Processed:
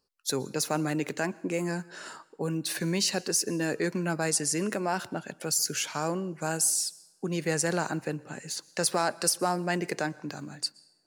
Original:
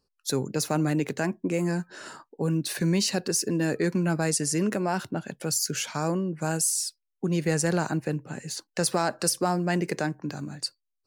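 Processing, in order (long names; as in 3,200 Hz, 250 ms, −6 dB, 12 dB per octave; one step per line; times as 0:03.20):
low-shelf EQ 270 Hz −9 dB
on a send: convolution reverb, pre-delay 110 ms, DRR 22.5 dB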